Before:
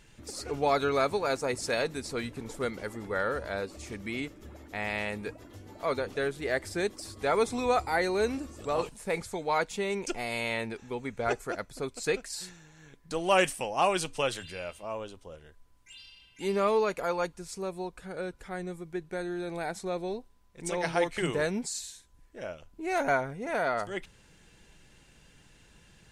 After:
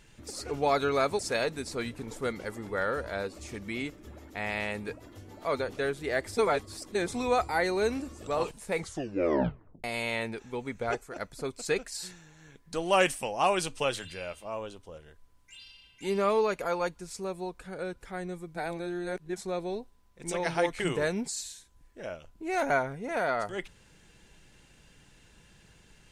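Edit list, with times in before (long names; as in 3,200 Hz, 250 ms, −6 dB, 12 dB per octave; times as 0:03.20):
0:01.19–0:01.57: remove
0:06.75–0:07.45: reverse
0:09.16: tape stop 1.06 s
0:11.19–0:11.54: fade out, to −9.5 dB
0:18.93–0:19.74: reverse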